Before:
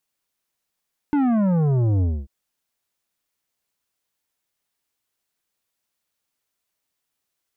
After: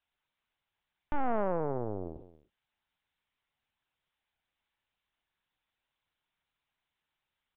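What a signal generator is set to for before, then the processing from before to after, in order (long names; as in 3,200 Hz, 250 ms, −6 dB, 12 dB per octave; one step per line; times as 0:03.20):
bass drop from 300 Hz, over 1.14 s, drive 10.5 dB, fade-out 0.25 s, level −17.5 dB
high-pass filter 470 Hz 12 dB per octave
single-tap delay 231 ms −16.5 dB
linear-prediction vocoder at 8 kHz pitch kept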